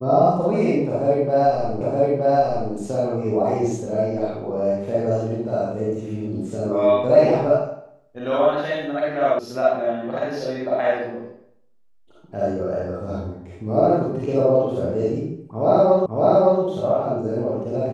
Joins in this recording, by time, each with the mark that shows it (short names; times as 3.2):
1.81 repeat of the last 0.92 s
9.39 sound cut off
16.06 repeat of the last 0.56 s